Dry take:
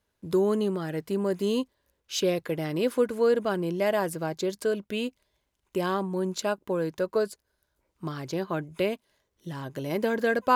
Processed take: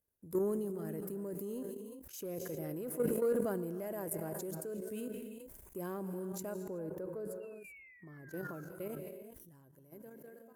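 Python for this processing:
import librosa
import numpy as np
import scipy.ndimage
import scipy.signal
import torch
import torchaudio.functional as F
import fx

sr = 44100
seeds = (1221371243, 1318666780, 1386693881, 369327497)

y = fx.fade_out_tail(x, sr, length_s=3.42)
y = fx.spec_paint(y, sr, seeds[0], shape='fall', start_s=7.4, length_s=1.21, low_hz=1300.0, high_hz=2800.0, level_db=-39.0)
y = fx.curve_eq(y, sr, hz=(460.0, 1100.0, 1700.0, 3700.0, 12000.0), db=(0, -8, -8, -21, 8))
y = fx.rev_gated(y, sr, seeds[1], gate_ms=400, shape='rising', drr_db=10.0)
y = 10.0 ** (-15.0 / 20.0) * np.tanh(y / 10.0 ** (-15.0 / 20.0))
y = fx.level_steps(y, sr, step_db=11)
y = fx.high_shelf(y, sr, hz=2600.0, db=fx.steps((0.0, 5.0), (6.62, -6.5), (8.3, 7.0)))
y = fx.sustainer(y, sr, db_per_s=28.0)
y = y * 10.0 ** (-7.5 / 20.0)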